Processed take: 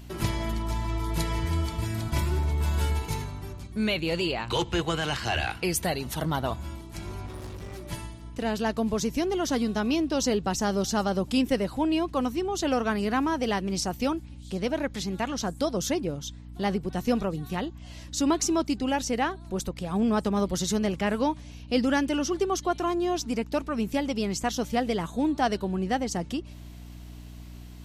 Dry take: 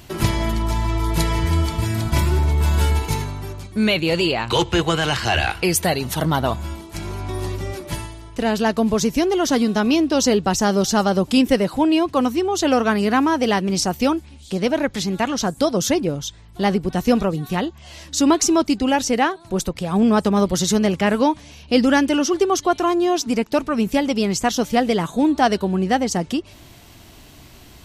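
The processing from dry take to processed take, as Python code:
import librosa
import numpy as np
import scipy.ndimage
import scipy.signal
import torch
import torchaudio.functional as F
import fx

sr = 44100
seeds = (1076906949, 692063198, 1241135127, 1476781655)

y = fx.clip_hard(x, sr, threshold_db=-29.5, at=(7.26, 7.87))
y = fx.add_hum(y, sr, base_hz=60, snr_db=15)
y = F.gain(torch.from_numpy(y), -8.5).numpy()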